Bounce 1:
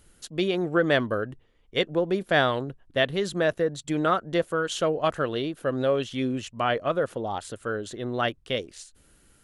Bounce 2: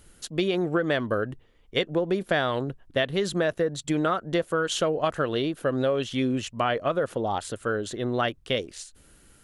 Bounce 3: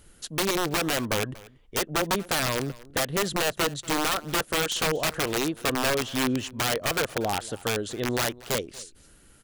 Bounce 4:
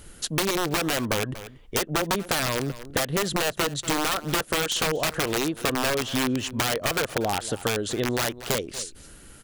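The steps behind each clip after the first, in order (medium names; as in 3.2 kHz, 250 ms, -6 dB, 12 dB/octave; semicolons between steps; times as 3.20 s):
compression, threshold -24 dBFS, peak gain reduction 8 dB; trim +3.5 dB
integer overflow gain 19 dB; delay 237 ms -21 dB
compression 5:1, threshold -31 dBFS, peak gain reduction 8.5 dB; trim +8 dB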